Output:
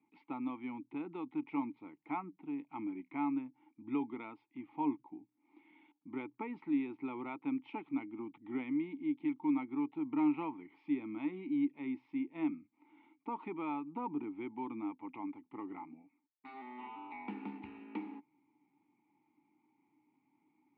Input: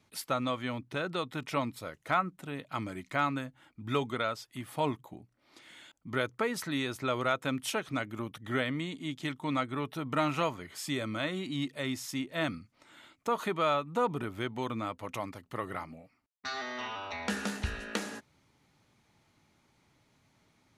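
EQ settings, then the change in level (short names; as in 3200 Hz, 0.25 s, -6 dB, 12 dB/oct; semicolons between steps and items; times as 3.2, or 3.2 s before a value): vowel filter u; BPF 130–3000 Hz; air absorption 280 m; +6.0 dB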